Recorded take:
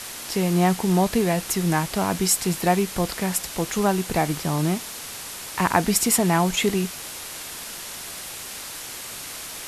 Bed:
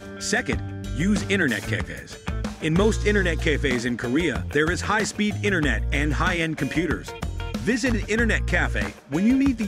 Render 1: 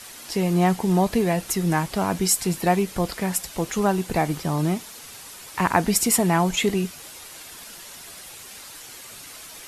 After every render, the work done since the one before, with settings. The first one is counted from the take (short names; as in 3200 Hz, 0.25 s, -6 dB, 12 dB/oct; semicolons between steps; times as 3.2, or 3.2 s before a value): denoiser 8 dB, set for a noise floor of -36 dBFS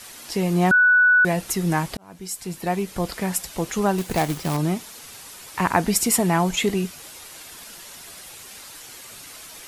0.71–1.25 bleep 1480 Hz -12 dBFS; 1.97–3.18 fade in; 3.98–4.57 companded quantiser 4-bit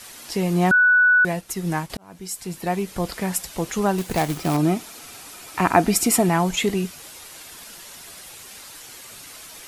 1.18–1.9 upward expander, over -37 dBFS; 4.36–6.29 small resonant body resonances 310/700/1300/2400 Hz, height 7 dB, ringing for 25 ms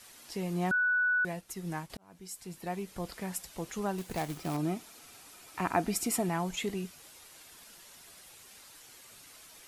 gain -12.5 dB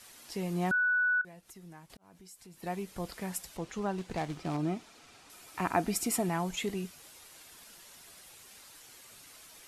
1.21–2.63 compressor 2.5:1, threshold -53 dBFS; 3.57–5.3 air absorption 71 m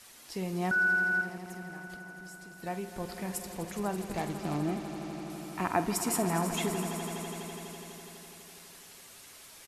doubler 48 ms -13.5 dB; on a send: swelling echo 83 ms, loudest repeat 5, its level -13.5 dB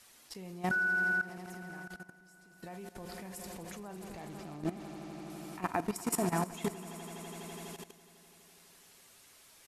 level quantiser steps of 15 dB